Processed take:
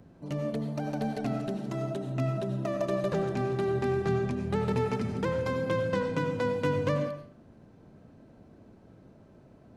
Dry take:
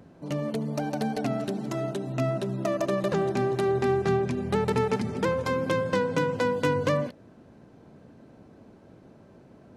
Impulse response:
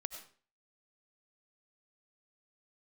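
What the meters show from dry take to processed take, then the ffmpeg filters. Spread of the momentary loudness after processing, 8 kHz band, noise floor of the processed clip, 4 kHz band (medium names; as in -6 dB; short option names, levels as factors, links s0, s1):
5 LU, no reading, -56 dBFS, -5.5 dB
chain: -filter_complex "[0:a]lowshelf=f=150:g=7.5,acrossover=split=510|4300[s0][s1][s2];[s2]alimiter=level_in=4.47:limit=0.0631:level=0:latency=1:release=19,volume=0.224[s3];[s0][s1][s3]amix=inputs=3:normalize=0[s4];[1:a]atrim=start_sample=2205[s5];[s4][s5]afir=irnorm=-1:irlink=0,volume=0.708"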